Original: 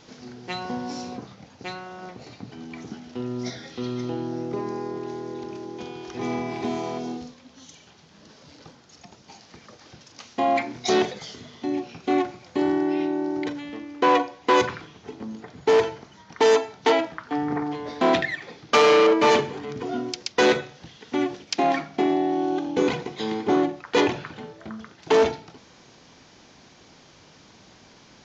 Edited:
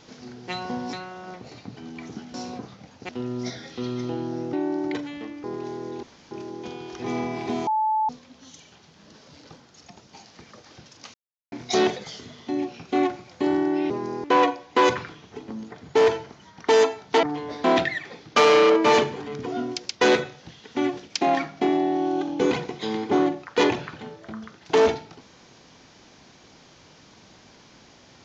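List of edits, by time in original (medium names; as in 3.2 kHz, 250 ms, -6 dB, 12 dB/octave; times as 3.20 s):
0.93–1.68 s: move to 3.09 s
4.53–4.87 s: swap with 13.05–13.96 s
5.46 s: insert room tone 0.28 s
6.82–7.24 s: bleep 869 Hz -19.5 dBFS
10.29–10.67 s: mute
16.95–17.60 s: delete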